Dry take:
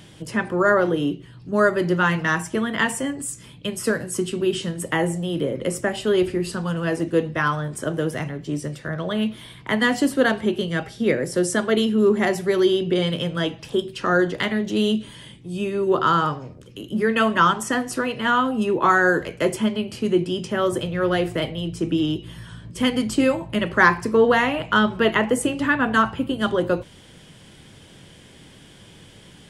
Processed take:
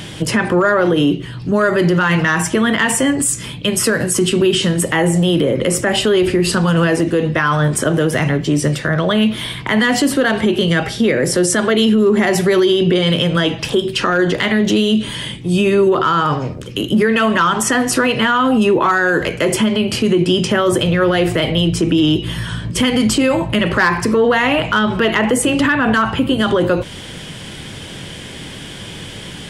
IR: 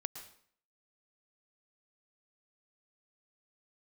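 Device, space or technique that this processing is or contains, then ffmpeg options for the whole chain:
mastering chain: -af "equalizer=f=2.6k:t=o:w=1.9:g=3,acompressor=threshold=-25dB:ratio=1.5,asoftclip=type=tanh:threshold=-8.5dB,asoftclip=type=hard:threshold=-13dB,alimiter=level_in=20.5dB:limit=-1dB:release=50:level=0:latency=1,volume=-5.5dB"

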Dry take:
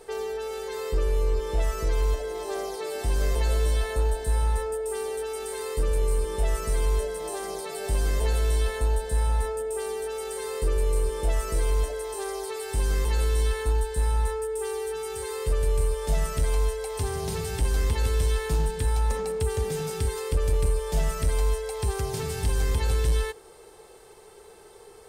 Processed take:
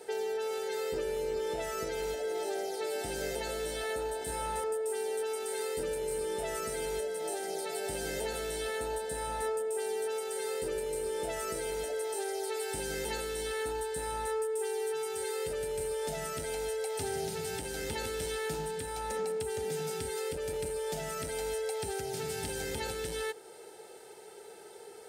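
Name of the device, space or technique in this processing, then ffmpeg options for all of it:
PA system with an anti-feedback notch: -filter_complex "[0:a]asettb=1/sr,asplit=3[a][b][c];[a]atrim=end=4.184[d];[b]atrim=start=4.18:end=4.64,asetpts=PTS-STARTPTS,afade=t=in:d=0.004:c=qsin,afade=t=out:st=0.456:d=0.004:c=qsin,asplit=2[e][f];[f]adelay=31,volume=-3dB[g];[e][g]amix=inputs=2:normalize=0,atrim=end_sample=20286[h];[c]atrim=start=4.636[i];[d][h]acrossfade=d=0.004:c1=hsin:c2=qsin[j];[j][i]acrossfade=d=0.004:c1=qsin:c2=hsin,highpass=190,asuperstop=centerf=1100:order=20:qfactor=5.5,alimiter=level_in=1.5dB:limit=-24dB:level=0:latency=1:release=498,volume=-1.5dB"

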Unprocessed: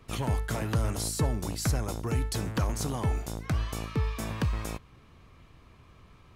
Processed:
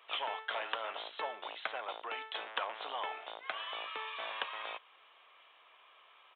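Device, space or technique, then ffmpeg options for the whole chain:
musical greeting card: -af "aresample=8000,aresample=44100,highpass=f=620:w=0.5412,highpass=f=620:w=1.3066,equalizer=f=3.2k:t=o:w=0.53:g=7"

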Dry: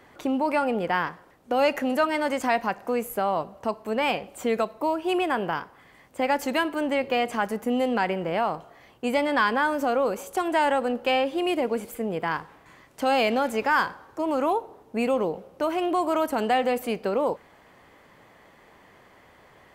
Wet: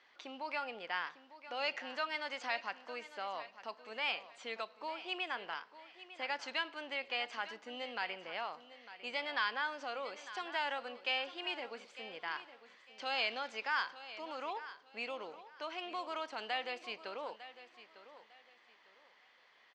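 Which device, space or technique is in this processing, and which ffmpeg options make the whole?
piezo pickup straight into a mixer: -af "lowpass=f=5.1k:w=0.5412,lowpass=f=5.1k:w=1.3066,lowpass=5.2k,aderivative,equalizer=f=120:t=o:w=0.9:g=-4.5,aecho=1:1:902|1804|2706:0.188|0.0509|0.0137,volume=2.5dB"

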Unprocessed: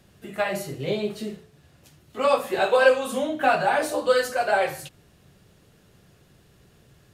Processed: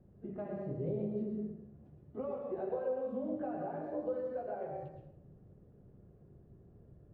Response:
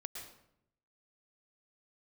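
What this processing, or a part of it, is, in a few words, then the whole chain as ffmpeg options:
television next door: -filter_complex "[0:a]acompressor=threshold=-30dB:ratio=4,lowpass=480[a];[1:a]atrim=start_sample=2205[b];[a][b]afir=irnorm=-1:irlink=0,volume=1dB"

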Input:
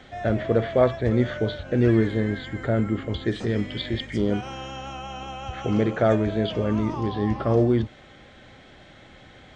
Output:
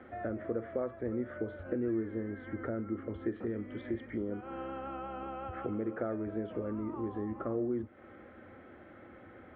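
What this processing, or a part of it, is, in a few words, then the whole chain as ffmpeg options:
bass amplifier: -af "acompressor=threshold=-32dB:ratio=4,highpass=67,equalizer=f=90:t=q:w=4:g=5,equalizer=f=140:t=q:w=4:g=-9,equalizer=f=240:t=q:w=4:g=6,equalizer=f=340:t=q:w=4:g=9,equalizer=f=510:t=q:w=4:g=6,equalizer=f=1.3k:t=q:w=4:g=7,lowpass=f=2.1k:w=0.5412,lowpass=f=2.1k:w=1.3066,volume=-7dB"

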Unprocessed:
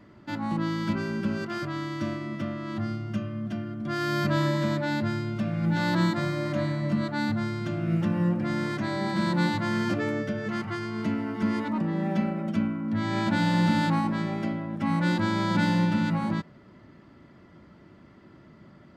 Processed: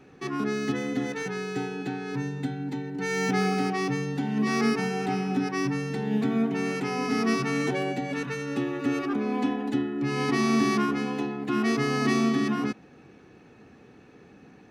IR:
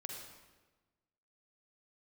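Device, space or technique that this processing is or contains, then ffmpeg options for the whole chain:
nightcore: -af "asetrate=56889,aresample=44100"

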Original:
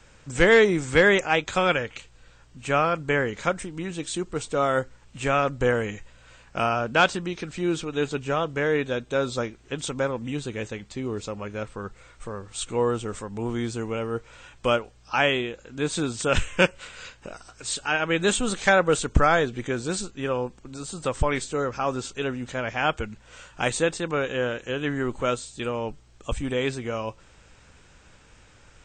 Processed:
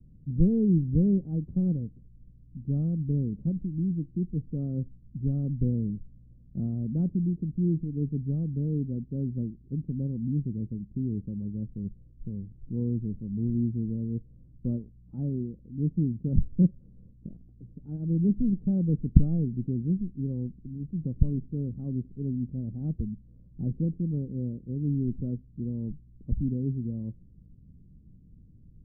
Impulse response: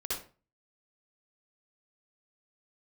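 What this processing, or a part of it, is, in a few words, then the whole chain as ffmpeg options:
the neighbour's flat through the wall: -af "lowpass=f=260:w=0.5412,lowpass=f=260:w=1.3066,equalizer=f=170:t=o:w=0.94:g=7,volume=1dB"

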